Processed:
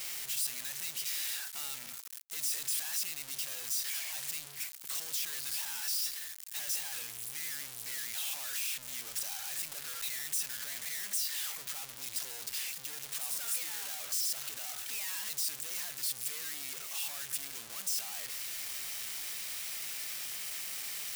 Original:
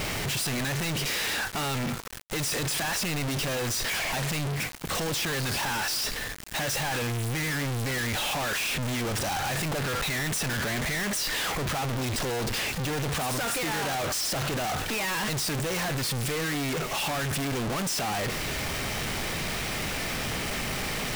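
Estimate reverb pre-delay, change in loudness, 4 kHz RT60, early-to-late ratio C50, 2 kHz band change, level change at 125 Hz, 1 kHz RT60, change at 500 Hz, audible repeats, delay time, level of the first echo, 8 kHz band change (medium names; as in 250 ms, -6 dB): no reverb, -6.5 dB, no reverb, no reverb, -14.5 dB, -32.5 dB, no reverb, -25.5 dB, no echo, no echo, no echo, -3.5 dB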